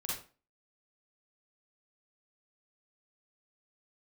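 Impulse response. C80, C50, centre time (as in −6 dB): 8.0 dB, 0.0 dB, 51 ms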